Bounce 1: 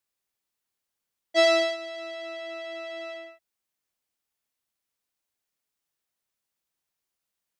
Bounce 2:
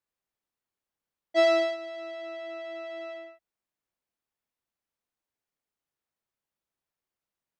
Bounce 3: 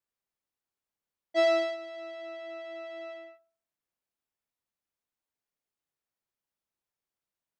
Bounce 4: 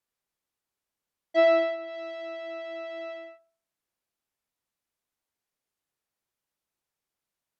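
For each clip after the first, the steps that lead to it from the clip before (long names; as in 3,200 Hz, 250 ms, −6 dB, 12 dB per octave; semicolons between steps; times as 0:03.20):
high-shelf EQ 2,500 Hz −11 dB
delay with a band-pass on its return 68 ms, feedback 34%, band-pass 710 Hz, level −15 dB; level −3 dB
treble cut that deepens with the level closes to 2,800 Hz, closed at −32 dBFS; level +4 dB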